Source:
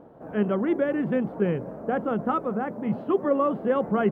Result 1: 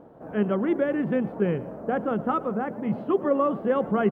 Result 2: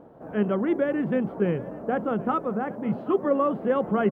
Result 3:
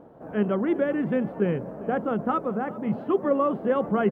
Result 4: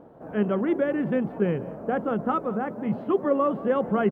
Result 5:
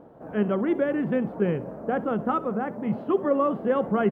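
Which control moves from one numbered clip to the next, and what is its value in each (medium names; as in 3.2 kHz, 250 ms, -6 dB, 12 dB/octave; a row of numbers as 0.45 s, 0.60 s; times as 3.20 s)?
feedback delay, time: 115 ms, 777 ms, 395 ms, 181 ms, 65 ms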